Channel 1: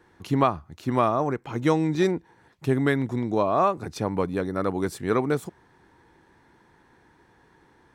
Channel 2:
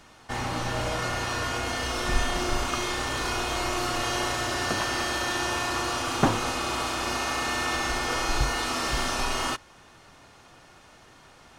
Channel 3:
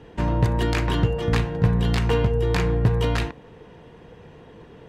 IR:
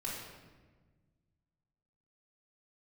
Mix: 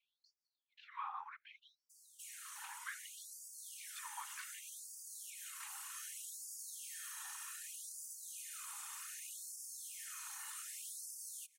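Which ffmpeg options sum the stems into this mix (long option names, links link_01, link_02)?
-filter_complex "[0:a]lowpass=frequency=3400:width=0.5412,lowpass=frequency=3400:width=1.3066,acompressor=threshold=-26dB:ratio=6,volume=-3dB[link_01];[1:a]aexciter=amount=8.7:drive=5:freq=6900,highpass=490,bandreject=frequency=890:width=12,adelay=1900,volume=-8dB[link_02];[2:a]highpass=200,adelay=2450,volume=-8dB[link_03];[link_02][link_03]amix=inputs=2:normalize=0,acompressor=threshold=-44dB:ratio=2.5,volume=0dB[link_04];[link_01][link_04]amix=inputs=2:normalize=0,afftfilt=real='hypot(re,im)*cos(2*PI*random(0))':imag='hypot(re,im)*sin(2*PI*random(1))':win_size=512:overlap=0.75,afftfilt=real='re*gte(b*sr/1024,760*pow(4600/760,0.5+0.5*sin(2*PI*0.65*pts/sr)))':imag='im*gte(b*sr/1024,760*pow(4600/760,0.5+0.5*sin(2*PI*0.65*pts/sr)))':win_size=1024:overlap=0.75"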